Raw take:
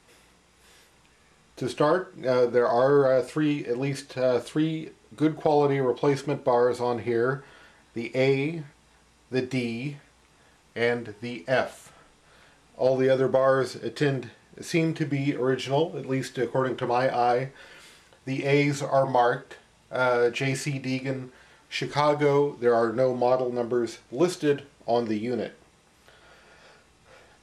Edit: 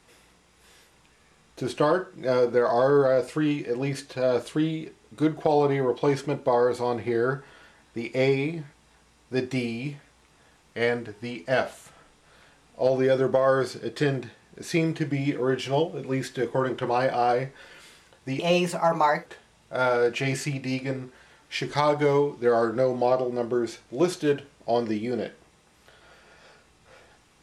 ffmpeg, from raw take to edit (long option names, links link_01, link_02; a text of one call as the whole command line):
ffmpeg -i in.wav -filter_complex "[0:a]asplit=3[link_01][link_02][link_03];[link_01]atrim=end=18.394[link_04];[link_02]atrim=start=18.39:end=19.46,asetpts=PTS-STARTPTS,asetrate=54243,aresample=44100,atrim=end_sample=38363,asetpts=PTS-STARTPTS[link_05];[link_03]atrim=start=19.456[link_06];[link_04][link_05]acrossfade=duration=0.004:curve1=hsin:curve2=hsin[link_07];[link_07][link_06]acrossfade=duration=0.004:curve1=hsin:curve2=hsin" out.wav